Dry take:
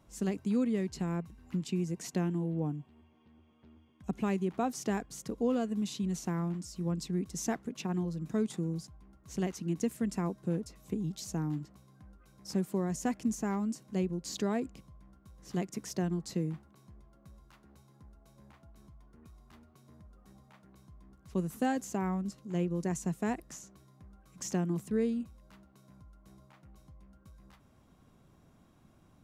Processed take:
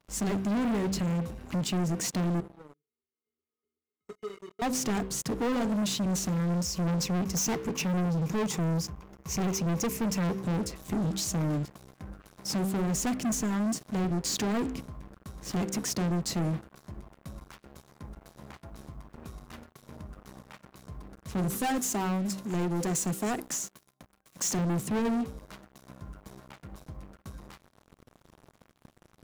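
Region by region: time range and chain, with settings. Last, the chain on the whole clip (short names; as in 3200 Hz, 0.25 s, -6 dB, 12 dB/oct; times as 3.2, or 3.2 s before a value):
2.4–4.62 resonator 420 Hz, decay 0.22 s, harmonics odd, mix 100% + three-band squash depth 40%
6.48–10.43 ripple EQ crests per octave 0.79, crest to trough 9 dB + hard clip -31 dBFS
21.55–24.59 HPF 260 Hz 6 dB/oct + high shelf 7800 Hz +7.5 dB
whole clip: de-hum 64.22 Hz, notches 8; sample leveller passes 5; gain -5 dB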